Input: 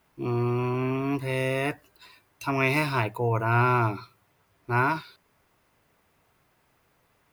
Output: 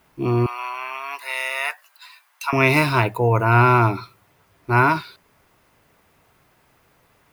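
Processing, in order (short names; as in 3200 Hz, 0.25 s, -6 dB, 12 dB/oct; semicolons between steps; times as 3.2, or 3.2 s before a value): 0.46–2.53 HPF 850 Hz 24 dB/oct; gain +7.5 dB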